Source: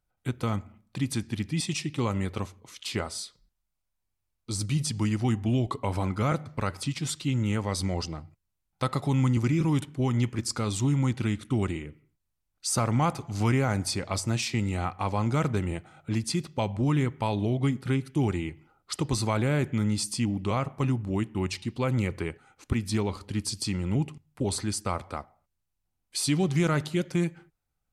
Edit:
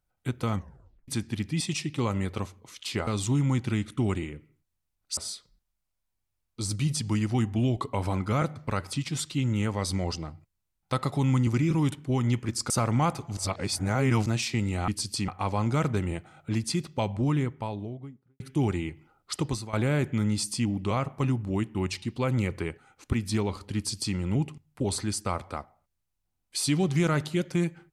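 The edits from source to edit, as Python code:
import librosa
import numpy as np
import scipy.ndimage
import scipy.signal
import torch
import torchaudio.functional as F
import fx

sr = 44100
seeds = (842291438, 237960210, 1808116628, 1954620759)

y = fx.studio_fade_out(x, sr, start_s=16.65, length_s=1.35)
y = fx.edit(y, sr, fx.tape_stop(start_s=0.55, length_s=0.53),
    fx.move(start_s=10.6, length_s=2.1, to_s=3.07),
    fx.reverse_span(start_s=13.37, length_s=0.89),
    fx.fade_out_to(start_s=19.08, length_s=0.25, curve='qua', floor_db=-14.0),
    fx.duplicate(start_s=23.36, length_s=0.4, to_s=14.88), tone=tone)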